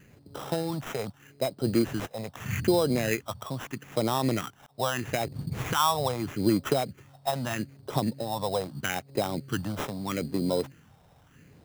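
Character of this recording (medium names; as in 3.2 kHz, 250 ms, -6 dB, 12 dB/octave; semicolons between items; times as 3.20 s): phasing stages 4, 0.79 Hz, lowest notch 310–1800 Hz; aliases and images of a low sample rate 4.5 kHz, jitter 0%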